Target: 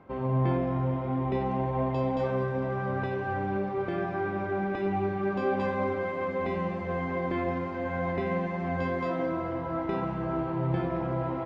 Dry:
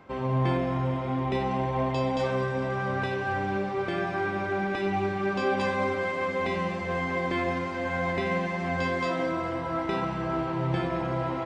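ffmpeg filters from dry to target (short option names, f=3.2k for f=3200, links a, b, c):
-af "lowpass=f=1k:p=1"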